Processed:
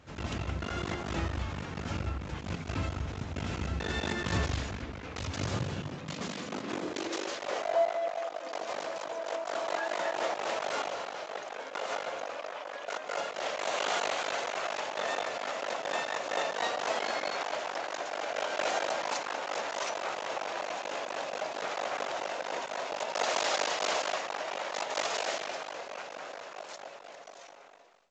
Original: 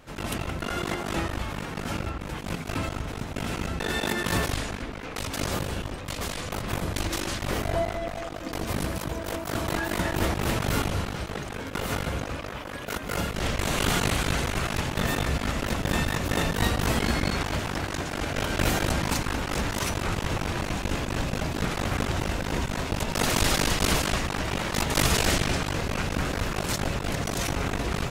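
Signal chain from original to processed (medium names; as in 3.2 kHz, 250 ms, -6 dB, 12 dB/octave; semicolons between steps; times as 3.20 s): fade out at the end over 4.33 s; high-pass sweep 71 Hz -> 620 Hz, 5.13–7.62 s; trim -6 dB; µ-law 128 kbps 16 kHz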